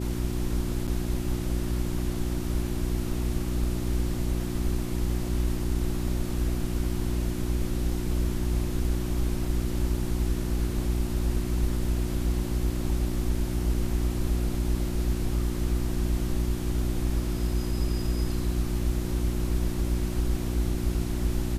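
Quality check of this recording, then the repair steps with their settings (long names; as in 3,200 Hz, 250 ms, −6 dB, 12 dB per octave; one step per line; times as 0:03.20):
mains hum 60 Hz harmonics 6 −31 dBFS
0:00.87–0:00.88: drop-out 7.9 ms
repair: hum removal 60 Hz, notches 6
repair the gap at 0:00.87, 7.9 ms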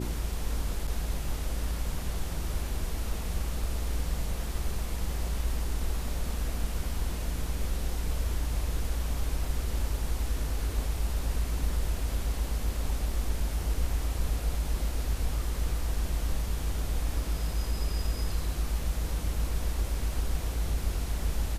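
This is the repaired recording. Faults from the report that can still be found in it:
none of them is left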